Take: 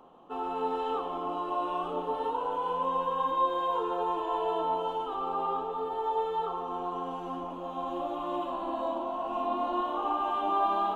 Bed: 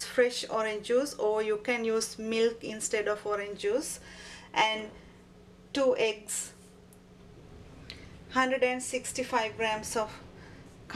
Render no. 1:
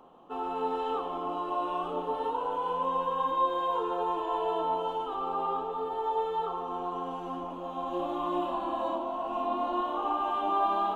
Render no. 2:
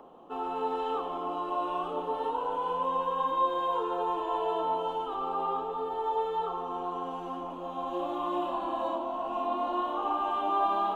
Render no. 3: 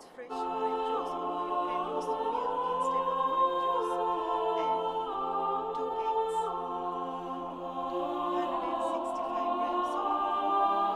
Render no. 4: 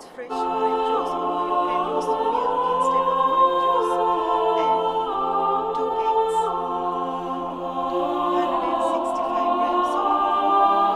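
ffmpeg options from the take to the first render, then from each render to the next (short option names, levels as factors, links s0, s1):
-filter_complex "[0:a]asettb=1/sr,asplit=3[s0][s1][s2];[s0]atrim=end=7.904[s3];[s1]atrim=start=7.9:end=8.96,asetpts=PTS-STARTPTS,afade=t=in:d=0.004:c=qsin,afade=t=out:st=1.056:d=0.004:c=qsin,asplit=2[s4][s5];[s5]adelay=28,volume=0.794[s6];[s4][s6]amix=inputs=2:normalize=0,atrim=end_sample=46746[s7];[s2]atrim=start=8.956[s8];[s3][s7]acrossfade=d=0.004:c1=hsin:c2=qsin[s9];[s9][s8]acrossfade=d=0.004:c1=qsin:c2=hsin"
-filter_complex "[0:a]acrossover=split=260|730|1300[s0][s1][s2][s3];[s0]alimiter=level_in=11.2:limit=0.0631:level=0:latency=1,volume=0.0891[s4];[s1]acompressor=mode=upward:threshold=0.00398:ratio=2.5[s5];[s4][s5][s2][s3]amix=inputs=4:normalize=0"
-filter_complex "[1:a]volume=0.0944[s0];[0:a][s0]amix=inputs=2:normalize=0"
-af "volume=2.99"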